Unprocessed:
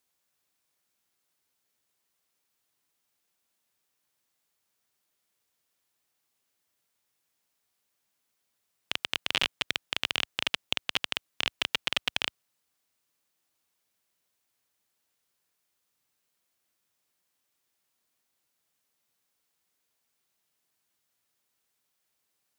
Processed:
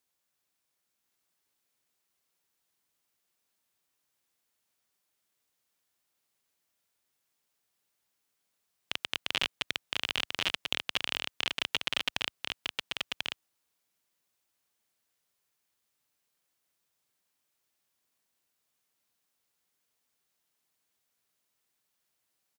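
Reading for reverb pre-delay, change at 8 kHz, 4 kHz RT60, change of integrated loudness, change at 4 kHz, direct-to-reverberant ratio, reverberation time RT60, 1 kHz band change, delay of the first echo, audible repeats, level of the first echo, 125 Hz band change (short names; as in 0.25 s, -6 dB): none, -1.5 dB, none, -2.5 dB, -1.5 dB, none, none, -1.5 dB, 1.041 s, 1, -3.5 dB, -1.5 dB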